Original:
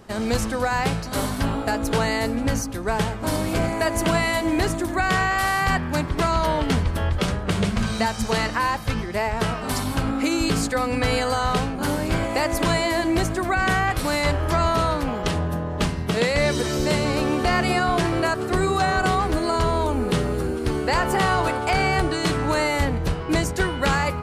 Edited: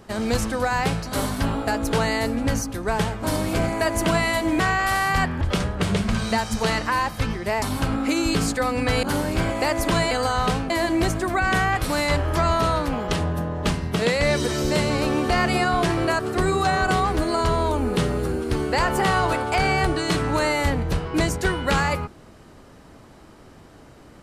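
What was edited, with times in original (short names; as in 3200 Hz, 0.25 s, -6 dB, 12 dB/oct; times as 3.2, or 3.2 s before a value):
4.6–5.12 cut
5.93–7.09 cut
9.3–9.77 cut
11.18–11.77 move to 12.85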